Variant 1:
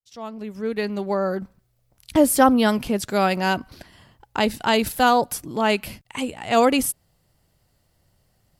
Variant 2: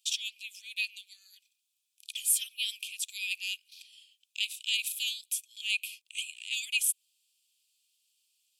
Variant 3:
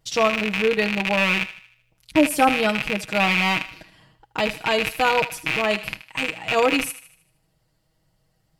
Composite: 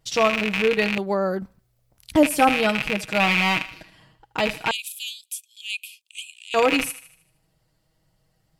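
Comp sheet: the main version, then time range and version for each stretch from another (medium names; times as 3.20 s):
3
0.98–2.23 s: from 1
4.71–6.54 s: from 2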